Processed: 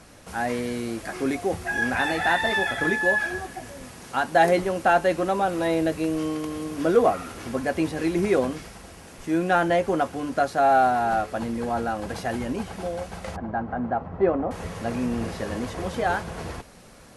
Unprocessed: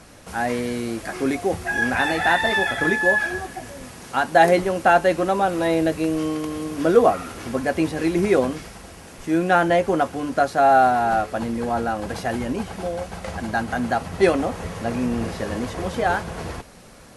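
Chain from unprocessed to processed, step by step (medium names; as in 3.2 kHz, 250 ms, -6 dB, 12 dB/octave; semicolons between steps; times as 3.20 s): 13.36–14.51 s: Chebyshev low-pass 1 kHz, order 2; in parallel at -9 dB: saturation -12 dBFS, distortion -15 dB; on the sum: trim -5.5 dB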